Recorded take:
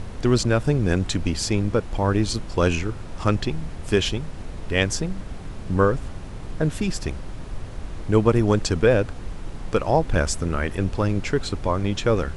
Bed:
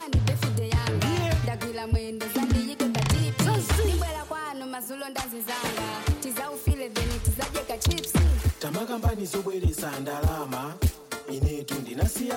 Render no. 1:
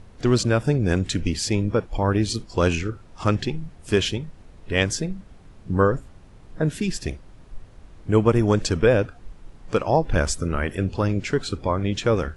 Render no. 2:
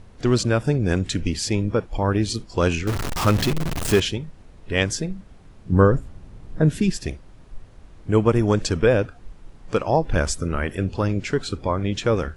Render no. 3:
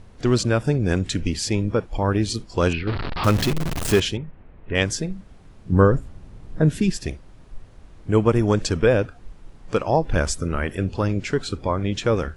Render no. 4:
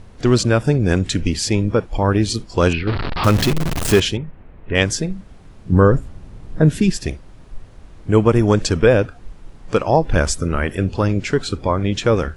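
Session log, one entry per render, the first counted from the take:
noise print and reduce 13 dB
2.87–4.00 s: jump at every zero crossing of -20 dBFS; 5.72–6.90 s: bass shelf 340 Hz +7 dB
2.73–3.24 s: elliptic low-pass 4.5 kHz; 4.17–4.75 s: low-pass 2.6 kHz 24 dB/octave
trim +4.5 dB; peak limiter -1 dBFS, peak gain reduction 3 dB

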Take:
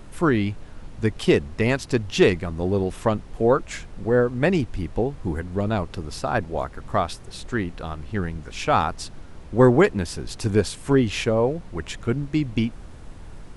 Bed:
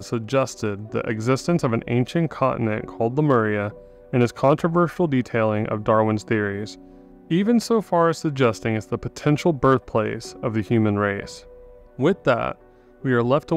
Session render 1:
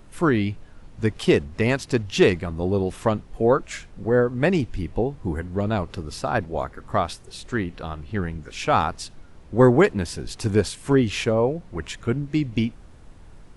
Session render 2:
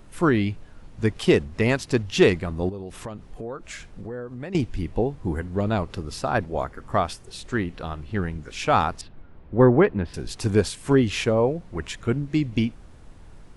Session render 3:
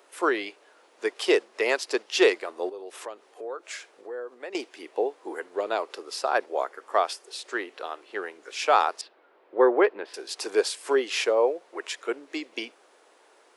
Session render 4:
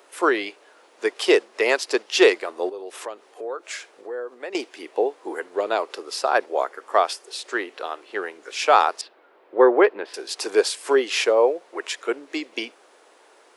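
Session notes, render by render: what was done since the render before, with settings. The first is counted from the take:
noise print and reduce 6 dB
2.69–4.55 s: compression 4:1, threshold -33 dBFS; 6.50–7.23 s: band-stop 3.9 kHz, Q 11; 9.01–10.14 s: distance through air 400 m
steep high-pass 380 Hz 36 dB/octave; dynamic bell 4.9 kHz, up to +4 dB, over -50 dBFS, Q 4
trim +4.5 dB

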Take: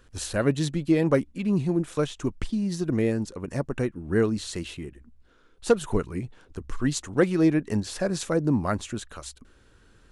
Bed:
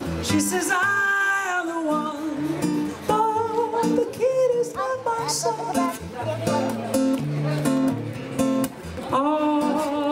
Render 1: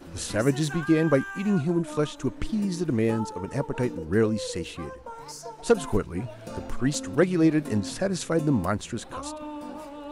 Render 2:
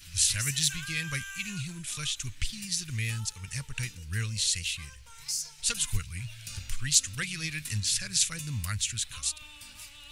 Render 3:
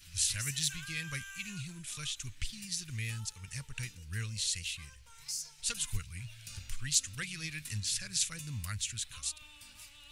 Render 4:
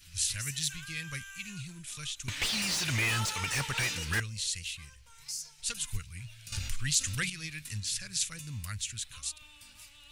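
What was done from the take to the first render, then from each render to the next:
add bed -16 dB
FFT filter 110 Hz 0 dB, 310 Hz -30 dB, 720 Hz -28 dB, 2.4 kHz +7 dB, 7.3 kHz +11 dB
trim -6 dB
2.28–4.20 s: overdrive pedal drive 34 dB, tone 3.4 kHz, clips at -19.5 dBFS; 6.52–7.30 s: level flattener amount 50%

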